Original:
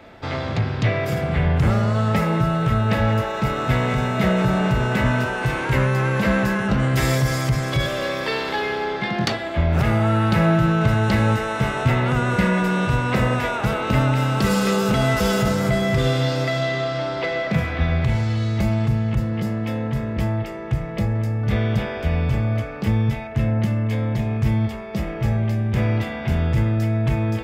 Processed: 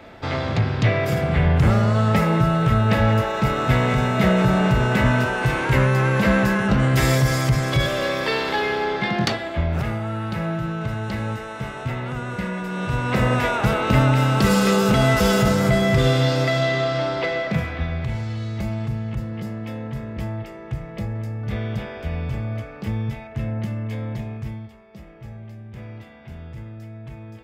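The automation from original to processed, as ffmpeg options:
-af "volume=3.98,afade=t=out:st=9.11:d=0.9:silence=0.316228,afade=t=in:st=12.68:d=0.75:silence=0.298538,afade=t=out:st=17.04:d=0.87:silence=0.398107,afade=t=out:st=24.13:d=0.54:silence=0.281838"

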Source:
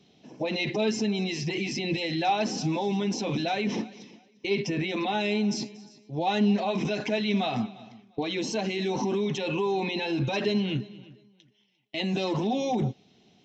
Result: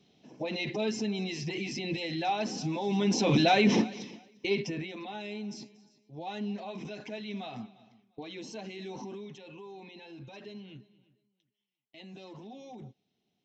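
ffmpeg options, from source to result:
-af "volume=1.88,afade=t=in:st=2.81:d=0.57:silence=0.298538,afade=t=out:st=3.98:d=0.62:silence=0.334965,afade=t=out:st=4.6:d=0.35:silence=0.375837,afade=t=out:st=8.97:d=0.46:silence=0.446684"

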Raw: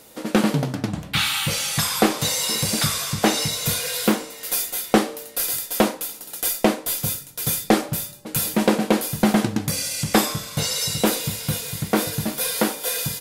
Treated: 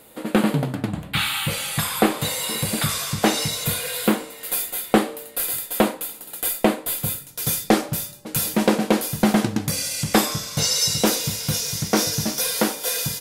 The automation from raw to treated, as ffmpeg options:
-af "asetnsamples=n=441:p=0,asendcmd='2.89 equalizer g -2.5;3.64 equalizer g -10.5;7.27 equalizer g 0.5;10.32 equalizer g 8;11.54 equalizer g 14.5;12.41 equalizer g 4.5',equalizer=f=5700:t=o:w=0.51:g=-13.5"

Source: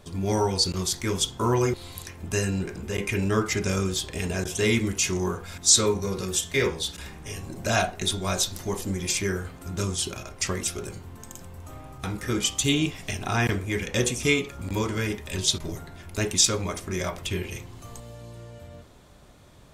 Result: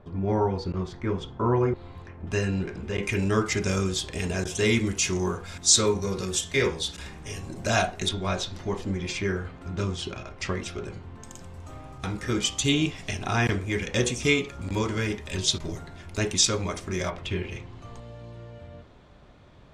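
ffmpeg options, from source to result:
-af "asetnsamples=n=441:p=0,asendcmd='2.27 lowpass f 4000;3.03 lowpass f 8400;8.09 lowpass f 3500;11.23 lowpass f 7200;17.1 lowpass f 3500',lowpass=1500"

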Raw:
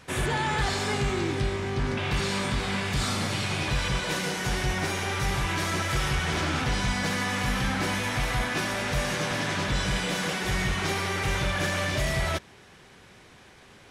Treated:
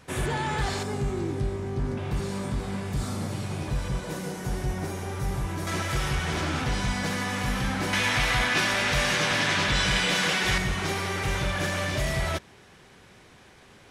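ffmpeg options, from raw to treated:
-af "asetnsamples=n=441:p=0,asendcmd='0.83 equalizer g -13.5;5.67 equalizer g -2.5;7.93 equalizer g 7;10.58 equalizer g -1.5',equalizer=f=2900:t=o:w=2.9:g=-4"

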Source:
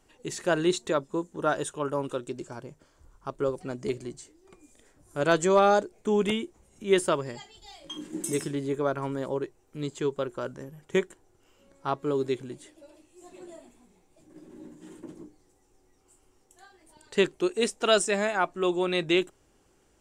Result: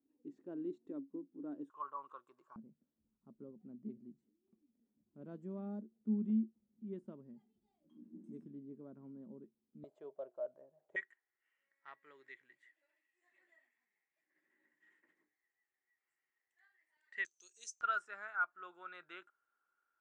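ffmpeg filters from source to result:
-af "asetnsamples=n=441:p=0,asendcmd='1.7 bandpass f 1100;2.56 bandpass f 220;9.84 bandpass f 630;10.96 bandpass f 1900;17.25 bandpass f 6200;17.81 bandpass f 1400',bandpass=f=280:t=q:w=16:csg=0"

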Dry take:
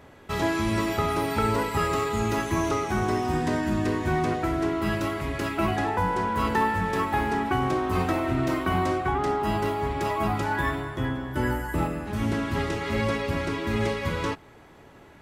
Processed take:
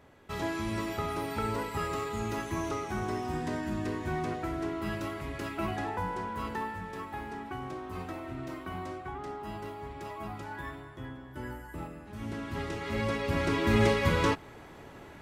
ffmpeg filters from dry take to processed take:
-af "volume=2.51,afade=t=out:st=5.9:d=0.98:silence=0.501187,afade=t=in:st=12.1:d=1.1:silence=0.334965,afade=t=in:st=13.2:d=0.47:silence=0.473151"

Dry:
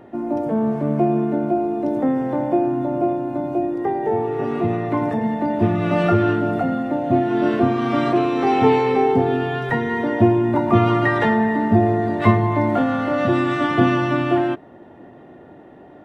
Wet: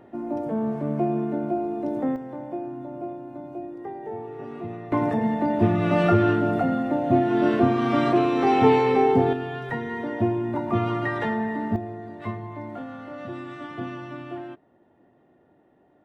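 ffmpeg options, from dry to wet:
-af "asetnsamples=n=441:p=0,asendcmd='2.16 volume volume -13.5dB;4.92 volume volume -2dB;9.33 volume volume -8.5dB;11.76 volume volume -17dB',volume=0.501"

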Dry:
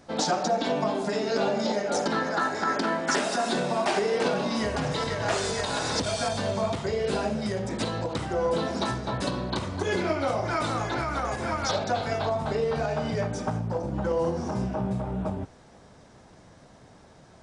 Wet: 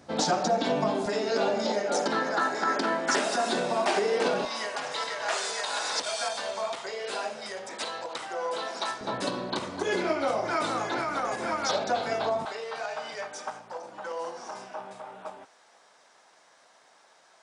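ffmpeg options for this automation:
-af "asetnsamples=n=441:p=0,asendcmd='1.06 highpass f 250;4.45 highpass f 720;9.01 highpass f 250;12.45 highpass f 860',highpass=71"

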